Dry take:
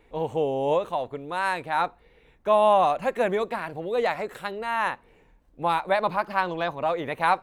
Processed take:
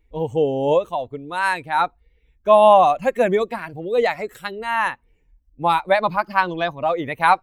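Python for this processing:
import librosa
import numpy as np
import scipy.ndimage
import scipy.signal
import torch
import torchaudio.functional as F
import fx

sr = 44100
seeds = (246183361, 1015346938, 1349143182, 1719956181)

y = fx.bin_expand(x, sr, power=1.5)
y = y * librosa.db_to_amplitude(8.5)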